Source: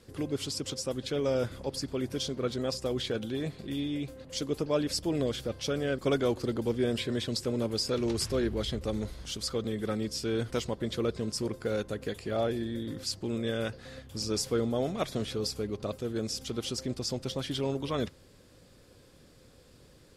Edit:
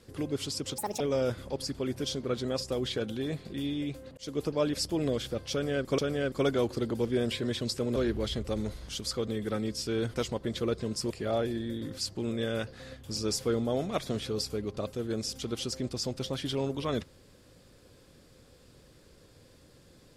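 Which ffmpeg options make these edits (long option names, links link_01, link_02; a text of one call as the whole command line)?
ffmpeg -i in.wav -filter_complex "[0:a]asplit=7[link_01][link_02][link_03][link_04][link_05][link_06][link_07];[link_01]atrim=end=0.784[link_08];[link_02]atrim=start=0.78:end=1.14,asetpts=PTS-STARTPTS,asetrate=71001,aresample=44100[link_09];[link_03]atrim=start=1.136:end=4.31,asetpts=PTS-STARTPTS,afade=type=out:start_time=3.17:duration=0.004:curve=hsin[link_10];[link_04]atrim=start=4.31:end=6.122,asetpts=PTS-STARTPTS,afade=type=in:duration=0.28:curve=qsin[link_11];[link_05]atrim=start=5.648:end=7.632[link_12];[link_06]atrim=start=8.328:end=11.472[link_13];[link_07]atrim=start=12.158[link_14];[link_08][link_09]acrossfade=duration=0.004:curve1=hsin:curve2=hsin[link_15];[link_10][link_11]concat=n=2:v=0:a=1[link_16];[link_15][link_16]acrossfade=duration=0.004:curve1=hsin:curve2=hsin[link_17];[link_17][link_12]acrossfade=duration=0.004:curve1=hsin:curve2=hsin[link_18];[link_18][link_13]acrossfade=duration=0.004:curve1=hsin:curve2=hsin[link_19];[link_19][link_14]acrossfade=duration=0.004:curve1=hsin:curve2=hsin" out.wav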